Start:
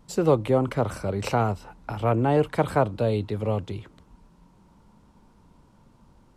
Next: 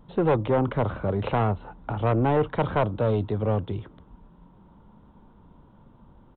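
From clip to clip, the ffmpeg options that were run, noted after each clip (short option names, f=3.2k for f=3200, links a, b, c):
-af "equalizer=f=2.4k:w=1.5:g=-9,aresample=8000,asoftclip=type=tanh:threshold=-19.5dB,aresample=44100,volume=3.5dB"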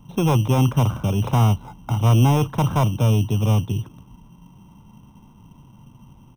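-filter_complex "[0:a]equalizer=f=125:t=o:w=1:g=11,equalizer=f=250:t=o:w=1:g=4,equalizer=f=500:t=o:w=1:g=-6,equalizer=f=1k:t=o:w=1:g=8,equalizer=f=2k:t=o:w=1:g=-12,acrossover=split=620[a][b];[a]acrusher=samples=15:mix=1:aa=0.000001[c];[c][b]amix=inputs=2:normalize=0"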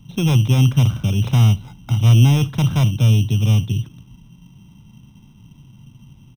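-af "equalizer=f=125:t=o:w=1:g=5,equalizer=f=500:t=o:w=1:g=-5,equalizer=f=1k:t=o:w=1:g=-9,equalizer=f=2k:t=o:w=1:g=3,equalizer=f=4k:t=o:w=1:g=8,aecho=1:1:71:0.075"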